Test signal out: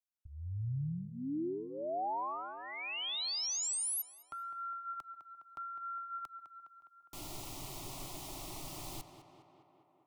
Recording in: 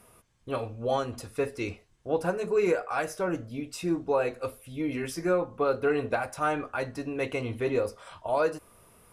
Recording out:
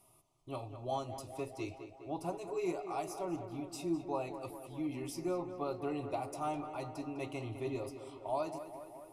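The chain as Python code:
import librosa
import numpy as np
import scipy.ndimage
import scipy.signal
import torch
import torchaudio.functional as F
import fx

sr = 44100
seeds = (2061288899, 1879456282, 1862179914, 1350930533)

p1 = fx.fixed_phaser(x, sr, hz=320.0, stages=8)
p2 = p1 + fx.echo_tape(p1, sr, ms=205, feedback_pct=74, wet_db=-9.0, lp_hz=2800.0, drive_db=19.0, wow_cents=12, dry=0)
y = F.gain(torch.from_numpy(p2), -6.5).numpy()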